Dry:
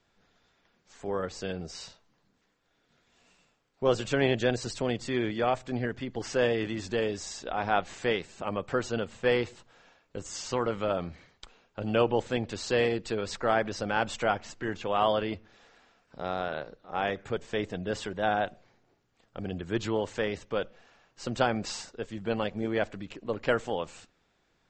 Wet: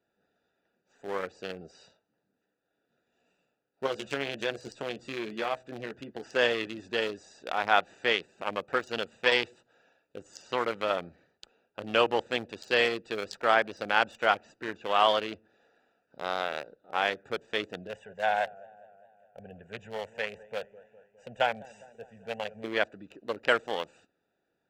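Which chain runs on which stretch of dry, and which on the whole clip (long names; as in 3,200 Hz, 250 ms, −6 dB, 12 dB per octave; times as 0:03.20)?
0:03.86–0:06.24: downward compressor 4 to 1, threshold −27 dBFS + double-tracking delay 14 ms −5.5 dB
0:08.75–0:10.17: high-shelf EQ 2,300 Hz +6 dB + saturating transformer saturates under 560 Hz
0:17.87–0:22.64: phaser with its sweep stopped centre 1,200 Hz, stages 6 + feedback echo with a swinging delay time 204 ms, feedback 61%, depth 106 cents, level −16 dB
whole clip: adaptive Wiener filter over 41 samples; high-pass filter 1,300 Hz 6 dB per octave; high-shelf EQ 6,400 Hz +4.5 dB; level +8.5 dB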